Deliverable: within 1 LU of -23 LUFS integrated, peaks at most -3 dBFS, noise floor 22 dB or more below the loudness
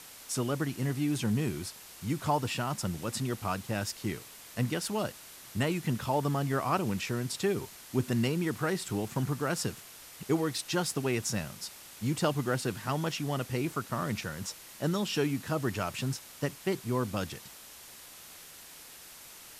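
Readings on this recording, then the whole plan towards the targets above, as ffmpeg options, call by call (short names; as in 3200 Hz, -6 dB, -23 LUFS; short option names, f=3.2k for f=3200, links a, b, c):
noise floor -50 dBFS; noise floor target -55 dBFS; loudness -32.5 LUFS; peak -15.0 dBFS; loudness target -23.0 LUFS
-> -af "afftdn=nr=6:nf=-50"
-af "volume=9.5dB"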